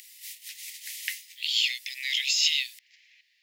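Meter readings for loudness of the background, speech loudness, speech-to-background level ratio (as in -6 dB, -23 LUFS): -40.0 LUFS, -25.5 LUFS, 14.5 dB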